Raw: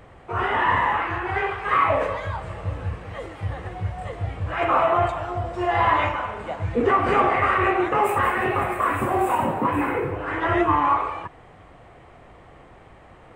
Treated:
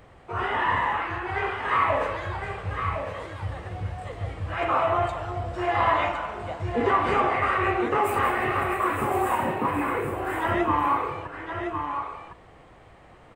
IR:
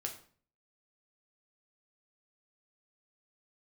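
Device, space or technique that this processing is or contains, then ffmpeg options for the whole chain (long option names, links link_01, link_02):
presence and air boost: -af "equalizer=frequency=4500:width_type=o:width=0.92:gain=3.5,highshelf=frequency=9700:gain=5,aecho=1:1:1059:0.473,volume=-4dB"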